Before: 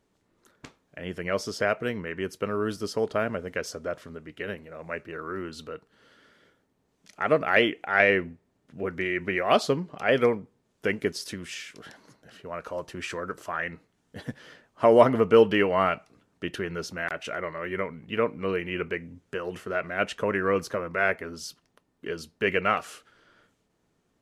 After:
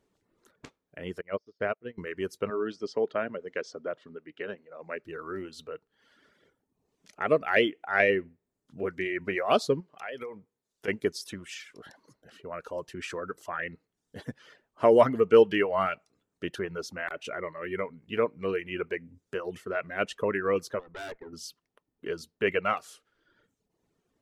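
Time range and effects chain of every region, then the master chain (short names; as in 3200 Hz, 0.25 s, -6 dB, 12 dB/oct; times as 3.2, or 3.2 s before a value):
1.21–1.98 air absorption 220 m + upward expander 2.5:1, over -41 dBFS
2.5–5.04 BPF 190–6600 Hz + air absorption 83 m
9.8–10.88 compressor 12:1, threshold -28 dBFS + low shelf 470 Hz -8 dB
20.79–21.33 LPF 1800 Hz + tube stage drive 32 dB, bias 0.8
whole clip: reverb removal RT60 0.91 s; bell 420 Hz +3.5 dB 0.74 oct; gain -3 dB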